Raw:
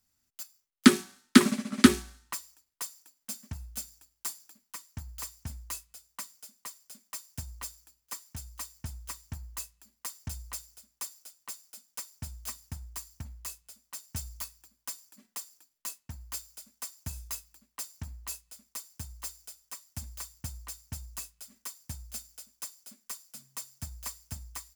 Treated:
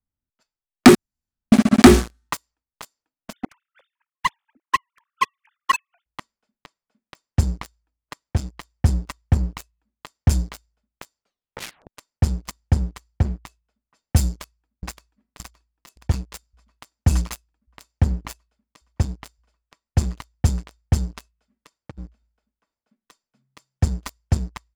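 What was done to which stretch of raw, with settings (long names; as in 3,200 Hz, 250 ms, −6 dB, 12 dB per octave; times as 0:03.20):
0:00.95–0:01.52: fill with room tone
0:03.33–0:06.06: three sine waves on the formant tracks
0:11.22: tape stop 0.66 s
0:14.25–0:14.93: delay throw 570 ms, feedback 80%, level −3.5 dB
0:21.69–0:22.80: downward compressor 8 to 1, threshold −43 dBFS
whole clip: low-pass that shuts in the quiet parts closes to 1,400 Hz, open at −31.5 dBFS; spectral tilt −2 dB per octave; leveller curve on the samples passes 5; level −2 dB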